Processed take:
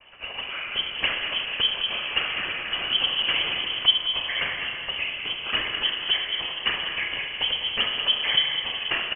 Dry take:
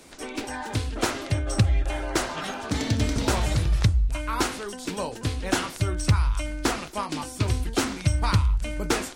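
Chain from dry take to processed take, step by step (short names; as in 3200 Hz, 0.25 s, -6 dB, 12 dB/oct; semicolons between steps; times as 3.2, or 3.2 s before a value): outdoor echo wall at 35 m, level -9 dB; noise vocoder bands 16; Schroeder reverb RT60 2.7 s, combs from 32 ms, DRR 3 dB; inverted band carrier 3200 Hz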